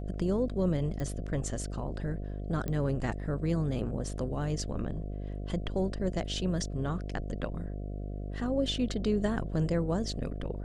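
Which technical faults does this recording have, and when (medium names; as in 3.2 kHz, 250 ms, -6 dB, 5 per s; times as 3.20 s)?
buzz 50 Hz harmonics 14 -37 dBFS
1.00 s: pop -24 dBFS
2.68 s: pop -21 dBFS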